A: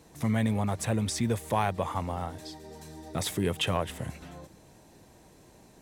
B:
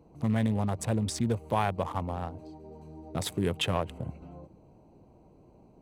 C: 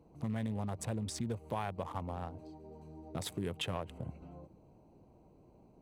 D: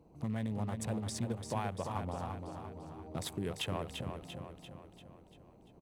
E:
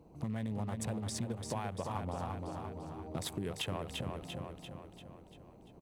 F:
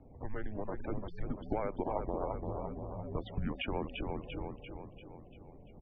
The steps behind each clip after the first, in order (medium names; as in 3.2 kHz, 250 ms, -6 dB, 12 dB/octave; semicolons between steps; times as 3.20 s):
local Wiener filter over 25 samples
compression 2:1, threshold -32 dBFS, peak gain reduction 6 dB; trim -4.5 dB
feedback delay 343 ms, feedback 53%, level -6.5 dB
compression 4:1, threshold -37 dBFS, peak gain reduction 6 dB; trim +3 dB
loudest bins only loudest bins 64; vibrato 9.6 Hz 49 cents; mistuned SSB -210 Hz 170–2800 Hz; trim +5 dB